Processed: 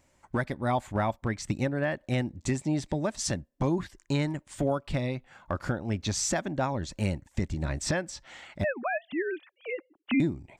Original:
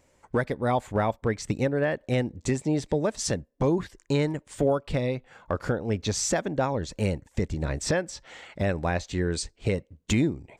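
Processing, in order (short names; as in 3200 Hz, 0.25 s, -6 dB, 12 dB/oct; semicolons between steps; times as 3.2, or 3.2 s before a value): 8.64–10.2 sine-wave speech; bell 460 Hz -13 dB 0.28 oct; gain -1.5 dB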